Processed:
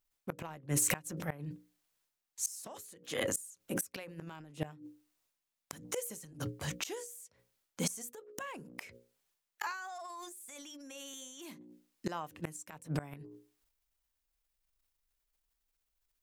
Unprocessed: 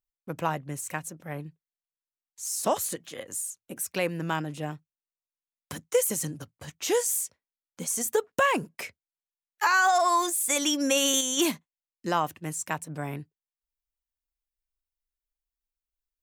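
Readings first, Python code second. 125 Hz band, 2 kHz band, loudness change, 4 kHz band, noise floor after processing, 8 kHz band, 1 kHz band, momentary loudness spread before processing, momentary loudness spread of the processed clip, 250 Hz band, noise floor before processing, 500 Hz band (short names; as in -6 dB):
-4.0 dB, -14.0 dB, -12.0 dB, -14.5 dB, under -85 dBFS, -10.0 dB, -18.0 dB, 17 LU, 16 LU, -10.5 dB, under -85 dBFS, -14.0 dB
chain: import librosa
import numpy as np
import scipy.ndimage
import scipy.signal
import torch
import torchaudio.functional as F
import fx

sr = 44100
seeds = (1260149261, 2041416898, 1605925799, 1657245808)

y = fx.hum_notches(x, sr, base_hz=60, count=9)
y = fx.gate_flip(y, sr, shuts_db=-24.0, range_db=-30)
y = fx.transient(y, sr, attack_db=-5, sustain_db=9)
y = F.gain(torch.from_numpy(y), 6.5).numpy()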